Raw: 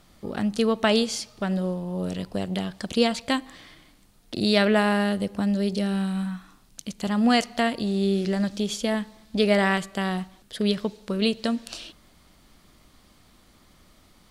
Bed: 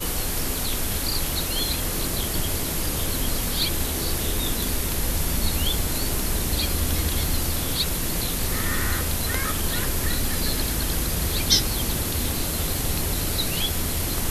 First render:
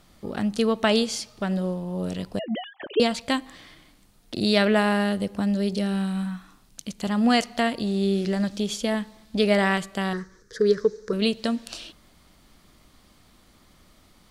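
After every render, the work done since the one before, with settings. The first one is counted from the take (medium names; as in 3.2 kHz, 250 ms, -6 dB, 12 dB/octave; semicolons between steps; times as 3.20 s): 2.39–3.00 s: formants replaced by sine waves; 10.13–11.13 s: FFT filter 120 Hz 0 dB, 270 Hz -7 dB, 450 Hz +12 dB, 720 Hz -20 dB, 1 kHz -3 dB, 1.7 kHz +7 dB, 2.8 kHz -18 dB, 6 kHz +7 dB, 9.3 kHz -11 dB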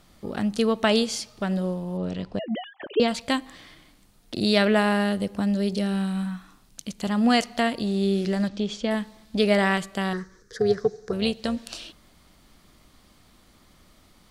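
1.97–3.08 s: distance through air 120 m; 8.48–8.91 s: distance through air 120 m; 10.57–11.57 s: AM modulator 300 Hz, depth 25%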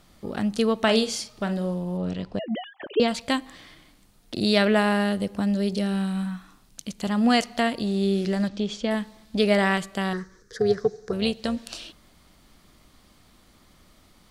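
0.82–2.14 s: doubling 45 ms -11 dB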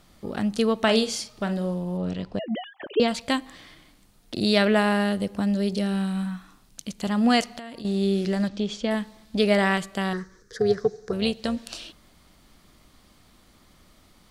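7.44–7.85 s: compression 12:1, threshold -34 dBFS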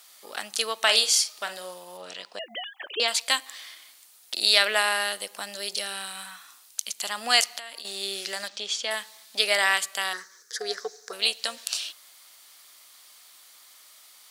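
high-pass 610 Hz 12 dB/octave; tilt EQ +4 dB/octave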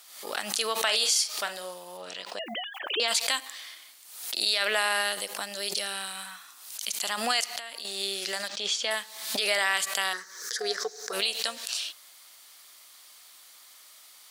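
peak limiter -13.5 dBFS, peak gain reduction 11 dB; swell ahead of each attack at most 70 dB/s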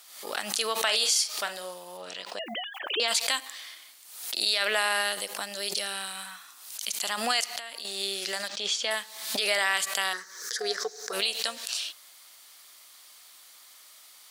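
no audible change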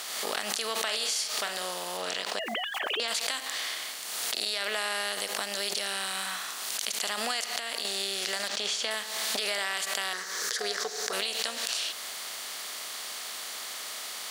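spectral levelling over time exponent 0.6; compression 3:1, threshold -29 dBFS, peak gain reduction 9 dB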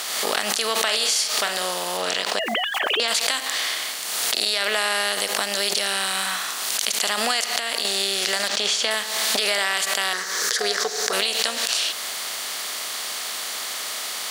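trim +8.5 dB; peak limiter -1 dBFS, peak gain reduction 2.5 dB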